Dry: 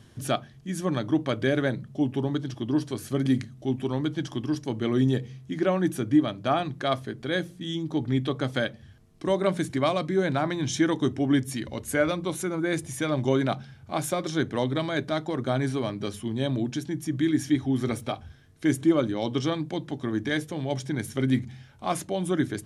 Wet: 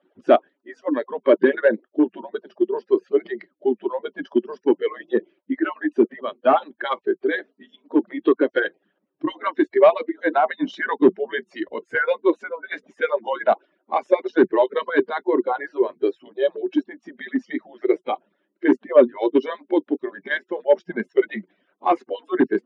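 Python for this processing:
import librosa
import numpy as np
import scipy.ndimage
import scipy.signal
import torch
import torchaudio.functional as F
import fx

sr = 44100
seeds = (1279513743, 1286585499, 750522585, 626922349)

p1 = fx.hpss_only(x, sr, part='percussive')
p2 = fx.noise_reduce_blind(p1, sr, reduce_db=14)
p3 = 10.0 ** (-24.5 / 20.0) * (np.abs((p2 / 10.0 ** (-24.5 / 20.0) + 3.0) % 4.0 - 2.0) - 1.0)
p4 = p2 + F.gain(torch.from_numpy(p3), -5.0).numpy()
p5 = fx.cabinet(p4, sr, low_hz=200.0, low_slope=24, high_hz=2600.0, hz=(370.0, 600.0, 2100.0), db=(9, 8, -5))
y = F.gain(torch.from_numpy(p5), 6.5).numpy()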